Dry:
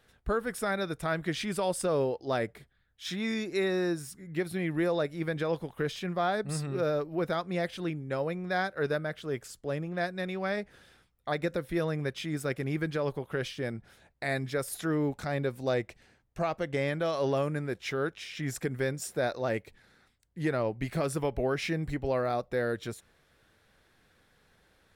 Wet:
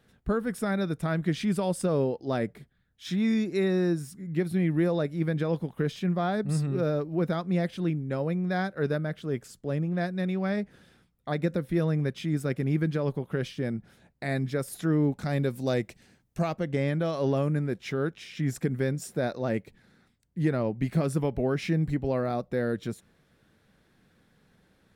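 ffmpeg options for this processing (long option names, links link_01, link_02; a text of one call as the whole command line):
ffmpeg -i in.wav -filter_complex "[0:a]asettb=1/sr,asplit=3[link_01][link_02][link_03];[link_01]atrim=end=15.254[link_04];[link_02]atrim=start=15.25:end=16.54,asetpts=PTS-STARTPTS,afade=type=in:duration=0.004:curve=qsin,afade=type=out:start_time=1.286:duration=0.004:curve=qsin,highshelf=frequency=3800:gain=10[link_05];[link_03]atrim=start=16.536[link_06];[link_04][link_05]acrossfade=duration=0.004:curve1=hsin:curve2=qsin[link_07];[link_07][link_06]acrossfade=duration=0.004:curve1=qsin:curve2=hsin,equalizer=frequency=190:width_type=o:width=1.7:gain=11.5,volume=-2.5dB" out.wav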